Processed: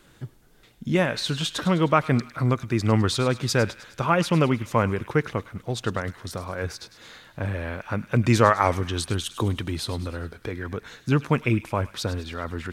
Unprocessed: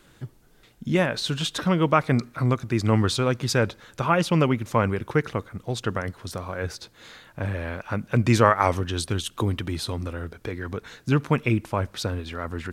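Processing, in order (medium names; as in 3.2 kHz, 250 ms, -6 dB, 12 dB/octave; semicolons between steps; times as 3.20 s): feedback echo behind a high-pass 103 ms, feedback 55%, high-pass 1.7 kHz, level -13 dB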